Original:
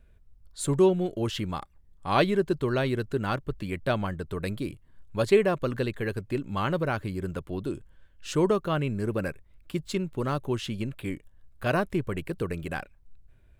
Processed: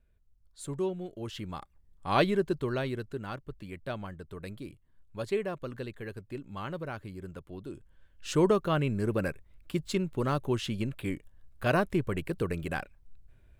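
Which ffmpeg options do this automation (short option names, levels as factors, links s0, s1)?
-af "volume=2.37,afade=t=in:st=1.16:d=1.07:silence=0.354813,afade=t=out:st=2.23:d=1.03:silence=0.398107,afade=t=in:st=7.69:d=0.63:silence=0.334965"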